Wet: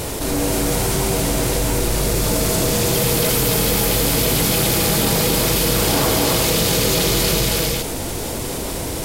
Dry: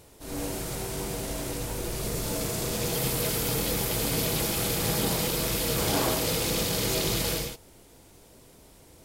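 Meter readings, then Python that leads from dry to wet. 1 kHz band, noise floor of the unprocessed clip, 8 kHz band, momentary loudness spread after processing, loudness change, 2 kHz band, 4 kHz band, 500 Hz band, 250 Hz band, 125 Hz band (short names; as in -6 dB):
+11.0 dB, -54 dBFS, +11.0 dB, 8 LU, +10.0 dB, +10.5 dB, +10.5 dB, +11.0 dB, +11.0 dB, +11.0 dB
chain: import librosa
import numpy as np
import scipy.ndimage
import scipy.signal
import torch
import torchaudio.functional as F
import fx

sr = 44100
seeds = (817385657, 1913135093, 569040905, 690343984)

y = x + 10.0 ** (-3.0 / 20.0) * np.pad(x, (int(269 * sr / 1000.0), 0))[:len(x)]
y = fx.env_flatten(y, sr, amount_pct=70)
y = y * 10.0 ** (6.5 / 20.0)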